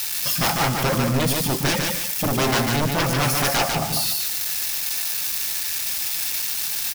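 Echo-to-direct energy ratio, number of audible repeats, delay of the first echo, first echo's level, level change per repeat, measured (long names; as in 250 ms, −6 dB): −3.0 dB, 2, 147 ms, −3.5 dB, −11.5 dB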